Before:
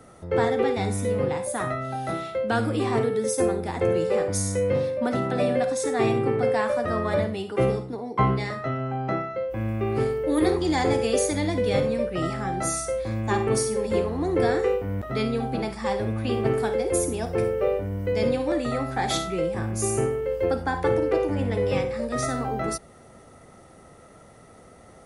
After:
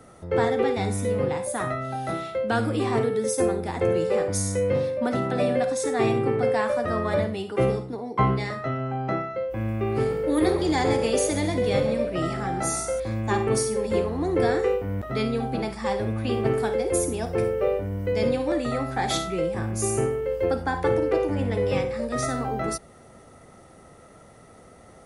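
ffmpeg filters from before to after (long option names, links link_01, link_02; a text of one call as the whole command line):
ffmpeg -i in.wav -filter_complex "[0:a]asettb=1/sr,asplit=3[link_01][link_02][link_03];[link_01]atrim=end=9.934[link_04];[link_02]atrim=start=9.93:end=13,asetpts=PTS-STARTPTS,afade=type=in:duration=0.004:curve=qsin,afade=type=out:start_time=3.066:duration=0.004:curve=qsin,asplit=4[link_05][link_06][link_07][link_08];[link_06]adelay=133,afreqshift=54,volume=-12dB[link_09];[link_07]adelay=266,afreqshift=108,volume=-21.6dB[link_10];[link_08]adelay=399,afreqshift=162,volume=-31.3dB[link_11];[link_05][link_09][link_10][link_11]amix=inputs=4:normalize=0,atrim=end_sample=135387[link_12];[link_03]atrim=start=12.996[link_13];[link_04][link_12]acrossfade=duration=0.004:curve1=hsin:curve2=qsin[link_14];[link_14][link_13]acrossfade=duration=0.004:curve1=qsin:curve2=hsin" out.wav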